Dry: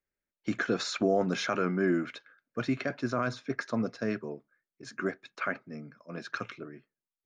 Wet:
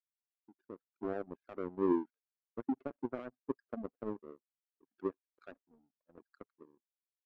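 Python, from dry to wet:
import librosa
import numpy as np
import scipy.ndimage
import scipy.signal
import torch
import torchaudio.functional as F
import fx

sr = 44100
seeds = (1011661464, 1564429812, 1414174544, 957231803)

y = fx.fade_in_head(x, sr, length_s=2.09)
y = fx.spec_gate(y, sr, threshold_db=-10, keep='strong')
y = fx.ladder_bandpass(y, sr, hz=400.0, resonance_pct=30)
y = fx.power_curve(y, sr, exponent=2.0)
y = y * librosa.db_to_amplitude(11.5)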